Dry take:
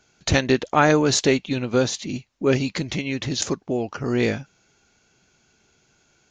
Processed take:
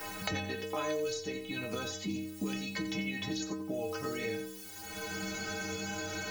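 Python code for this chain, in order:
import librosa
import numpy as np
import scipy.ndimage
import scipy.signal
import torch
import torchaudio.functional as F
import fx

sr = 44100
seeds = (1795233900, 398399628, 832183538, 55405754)

p1 = fx.recorder_agc(x, sr, target_db=-10.5, rise_db_per_s=27.0, max_gain_db=30)
p2 = fx.quant_dither(p1, sr, seeds[0], bits=6, dither='triangular')
p3 = p1 + (p2 * 10.0 ** (-8.5 / 20.0))
p4 = fx.stiff_resonator(p3, sr, f0_hz=93.0, decay_s=0.81, stiffness=0.03)
p5 = p4 + fx.echo_single(p4, sr, ms=86, db=-11.5, dry=0)
p6 = fx.band_squash(p5, sr, depth_pct=100)
y = p6 * 10.0 ** (-4.0 / 20.0)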